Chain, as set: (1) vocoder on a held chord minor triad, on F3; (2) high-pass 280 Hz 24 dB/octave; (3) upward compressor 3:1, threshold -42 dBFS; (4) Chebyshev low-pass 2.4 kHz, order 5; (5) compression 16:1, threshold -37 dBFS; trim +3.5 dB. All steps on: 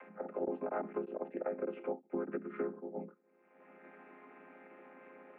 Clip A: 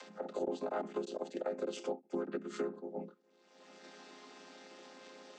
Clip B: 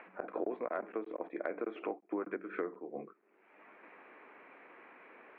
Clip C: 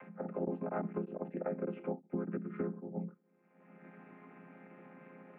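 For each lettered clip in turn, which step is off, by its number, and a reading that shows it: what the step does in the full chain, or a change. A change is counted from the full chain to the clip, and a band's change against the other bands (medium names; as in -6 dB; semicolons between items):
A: 4, momentary loudness spread change -2 LU; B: 1, 125 Hz band -8.0 dB; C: 2, 125 Hz band +14.0 dB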